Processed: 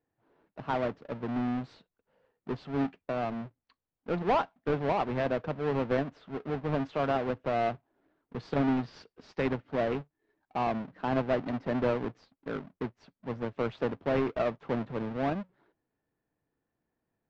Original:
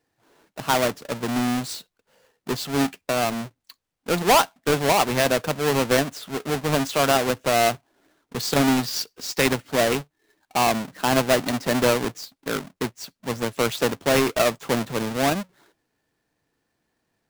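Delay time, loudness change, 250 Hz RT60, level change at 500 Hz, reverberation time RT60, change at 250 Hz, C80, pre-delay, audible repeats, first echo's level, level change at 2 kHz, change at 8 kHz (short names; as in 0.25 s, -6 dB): none, -9.5 dB, none, -8.0 dB, none, -7.0 dB, none, none, none, none, -13.5 dB, under -35 dB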